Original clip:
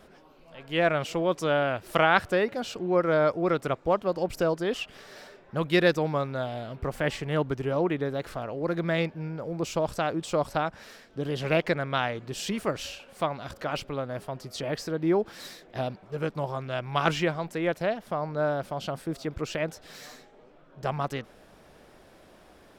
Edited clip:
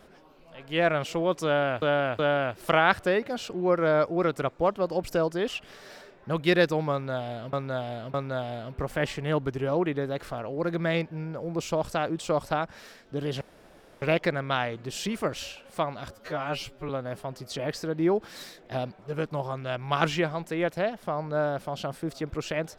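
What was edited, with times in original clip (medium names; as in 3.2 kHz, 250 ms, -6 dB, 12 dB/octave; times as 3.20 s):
1.45–1.82 s: loop, 3 plays
6.18–6.79 s: loop, 3 plays
11.45 s: insert room tone 0.61 s
13.54–13.93 s: stretch 2×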